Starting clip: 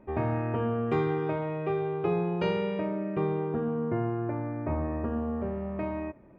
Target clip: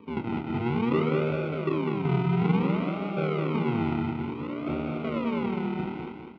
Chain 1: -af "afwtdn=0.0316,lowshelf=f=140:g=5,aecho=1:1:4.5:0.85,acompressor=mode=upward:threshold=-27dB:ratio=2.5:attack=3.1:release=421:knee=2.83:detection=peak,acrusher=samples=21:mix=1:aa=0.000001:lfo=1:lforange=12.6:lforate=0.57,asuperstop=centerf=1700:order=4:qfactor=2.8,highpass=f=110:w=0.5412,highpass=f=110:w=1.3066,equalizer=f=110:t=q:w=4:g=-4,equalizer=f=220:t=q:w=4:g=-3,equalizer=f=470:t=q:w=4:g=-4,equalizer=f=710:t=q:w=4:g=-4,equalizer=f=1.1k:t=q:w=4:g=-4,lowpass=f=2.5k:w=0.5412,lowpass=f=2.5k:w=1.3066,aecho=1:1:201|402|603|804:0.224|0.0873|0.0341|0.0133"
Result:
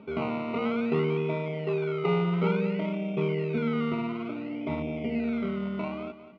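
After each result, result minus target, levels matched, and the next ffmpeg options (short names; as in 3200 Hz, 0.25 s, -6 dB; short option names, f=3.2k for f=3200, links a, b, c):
decimation with a swept rate: distortion -16 dB; echo-to-direct -8 dB
-af "afwtdn=0.0316,lowshelf=f=140:g=5,aecho=1:1:4.5:0.85,acompressor=mode=upward:threshold=-27dB:ratio=2.5:attack=3.1:release=421:knee=2.83:detection=peak,acrusher=samples=62:mix=1:aa=0.000001:lfo=1:lforange=37.2:lforate=0.57,asuperstop=centerf=1700:order=4:qfactor=2.8,highpass=f=110:w=0.5412,highpass=f=110:w=1.3066,equalizer=f=110:t=q:w=4:g=-4,equalizer=f=220:t=q:w=4:g=-3,equalizer=f=470:t=q:w=4:g=-4,equalizer=f=710:t=q:w=4:g=-4,equalizer=f=1.1k:t=q:w=4:g=-4,lowpass=f=2.5k:w=0.5412,lowpass=f=2.5k:w=1.3066,aecho=1:1:201|402|603|804:0.224|0.0873|0.0341|0.0133"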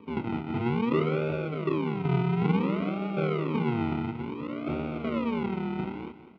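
echo-to-direct -8 dB
-af "afwtdn=0.0316,lowshelf=f=140:g=5,aecho=1:1:4.5:0.85,acompressor=mode=upward:threshold=-27dB:ratio=2.5:attack=3.1:release=421:knee=2.83:detection=peak,acrusher=samples=62:mix=1:aa=0.000001:lfo=1:lforange=37.2:lforate=0.57,asuperstop=centerf=1700:order=4:qfactor=2.8,highpass=f=110:w=0.5412,highpass=f=110:w=1.3066,equalizer=f=110:t=q:w=4:g=-4,equalizer=f=220:t=q:w=4:g=-3,equalizer=f=470:t=q:w=4:g=-4,equalizer=f=710:t=q:w=4:g=-4,equalizer=f=1.1k:t=q:w=4:g=-4,lowpass=f=2.5k:w=0.5412,lowpass=f=2.5k:w=1.3066,aecho=1:1:201|402|603|804|1005:0.562|0.219|0.0855|0.0334|0.013"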